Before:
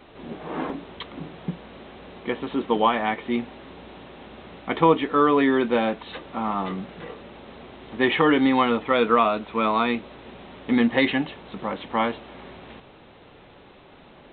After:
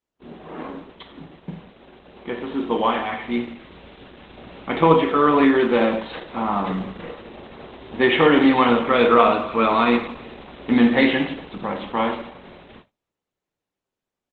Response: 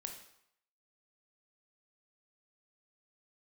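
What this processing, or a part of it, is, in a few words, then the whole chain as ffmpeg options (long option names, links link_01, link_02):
speakerphone in a meeting room: -filter_complex "[0:a]asettb=1/sr,asplit=3[link_01][link_02][link_03];[link_01]atrim=end=2.904[link_04];[link_02]atrim=start=2.9:end=4.37,asetpts=PTS-STARTPTS,afade=type=in:duration=0.004:curve=qsin,afade=type=out:start_time=1.466:duration=0.004:curve=qsin,equalizer=frequency=580:width_type=o:width=2.4:gain=-5[link_05];[link_03]atrim=start=4.366[link_06];[link_04][link_05]acrossfade=duration=0.004:curve1=hsin:curve2=qsin[link_07];[link_07][link_06]acrossfade=duration=0.004:curve1=qsin:curve2=hsin[link_08];[1:a]atrim=start_sample=2205[link_09];[link_08][link_09]afir=irnorm=-1:irlink=0,asplit=2[link_10][link_11];[link_11]adelay=200,highpass=300,lowpass=3400,asoftclip=type=hard:threshold=-17.5dB,volume=-29dB[link_12];[link_10][link_12]amix=inputs=2:normalize=0,dynaudnorm=framelen=260:gausssize=21:maxgain=14dB,agate=range=-35dB:threshold=-43dB:ratio=16:detection=peak,volume=-1dB" -ar 48000 -c:a libopus -b:a 12k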